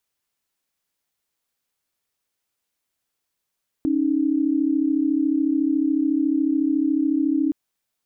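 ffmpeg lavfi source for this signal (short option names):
-f lavfi -i "aevalsrc='0.0944*(sin(2*PI*277.18*t)+sin(2*PI*311.13*t))':d=3.67:s=44100"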